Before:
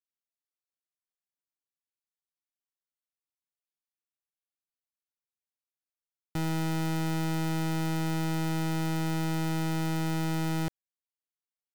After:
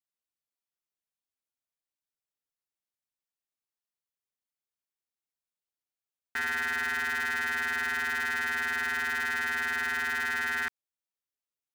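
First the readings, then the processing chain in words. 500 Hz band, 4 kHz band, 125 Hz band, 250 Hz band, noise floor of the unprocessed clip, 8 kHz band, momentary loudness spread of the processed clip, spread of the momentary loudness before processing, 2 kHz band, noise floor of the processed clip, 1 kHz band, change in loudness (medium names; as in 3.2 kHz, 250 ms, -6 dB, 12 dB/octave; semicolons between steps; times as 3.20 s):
-9.5 dB, +1.5 dB, under -25 dB, -18.5 dB, under -85 dBFS, -1.0 dB, 2 LU, 2 LU, +14.5 dB, under -85 dBFS, +1.5 dB, +2.0 dB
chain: ring modulator 1.7 kHz; trim +1.5 dB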